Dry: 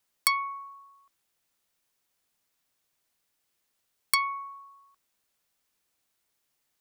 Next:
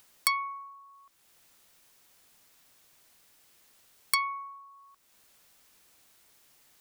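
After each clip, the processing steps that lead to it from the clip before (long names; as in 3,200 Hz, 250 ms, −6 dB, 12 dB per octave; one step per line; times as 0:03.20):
upward compression, threshold −45 dBFS
level −2 dB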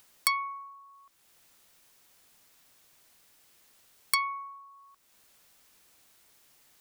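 no processing that can be heard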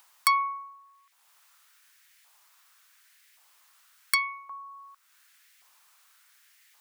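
auto-filter high-pass saw up 0.89 Hz 880–2,000 Hz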